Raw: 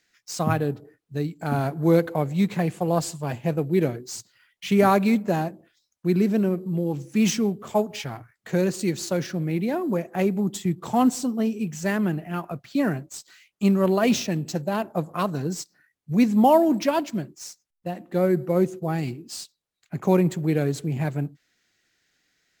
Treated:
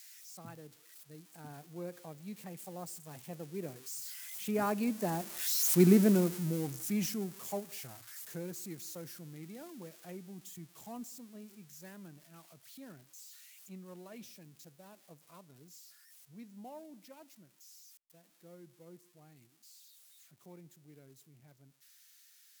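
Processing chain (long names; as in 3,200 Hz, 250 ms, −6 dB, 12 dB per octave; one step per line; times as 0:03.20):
spike at every zero crossing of −19 dBFS
source passing by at 0:05.85, 17 m/s, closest 5.2 metres
dynamic equaliser 3,400 Hz, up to −4 dB, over −55 dBFS, Q 0.97
level −1.5 dB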